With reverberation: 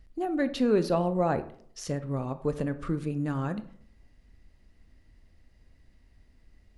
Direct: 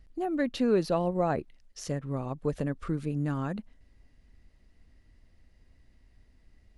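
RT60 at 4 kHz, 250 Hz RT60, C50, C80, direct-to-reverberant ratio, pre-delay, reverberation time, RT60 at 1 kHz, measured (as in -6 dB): 0.35 s, 0.60 s, 14.5 dB, 18.0 dB, 11.0 dB, 21 ms, 0.60 s, 0.55 s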